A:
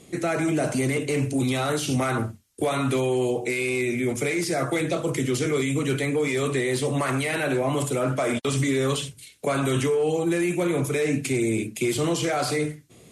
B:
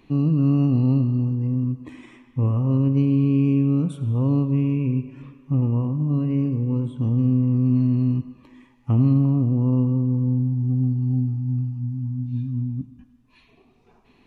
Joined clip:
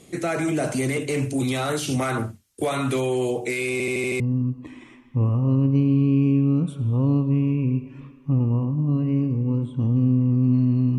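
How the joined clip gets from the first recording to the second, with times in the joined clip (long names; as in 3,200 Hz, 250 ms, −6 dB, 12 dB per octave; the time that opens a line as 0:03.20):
A
0:03.72: stutter in place 0.08 s, 6 plays
0:04.20: continue with B from 0:01.42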